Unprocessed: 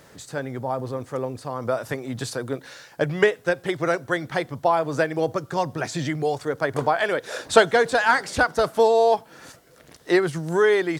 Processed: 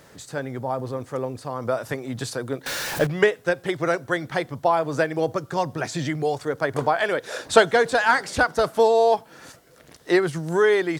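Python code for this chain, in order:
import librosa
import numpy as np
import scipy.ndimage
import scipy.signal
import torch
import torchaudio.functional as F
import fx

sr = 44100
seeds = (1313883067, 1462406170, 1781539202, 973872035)

y = fx.zero_step(x, sr, step_db=-24.0, at=(2.66, 3.07))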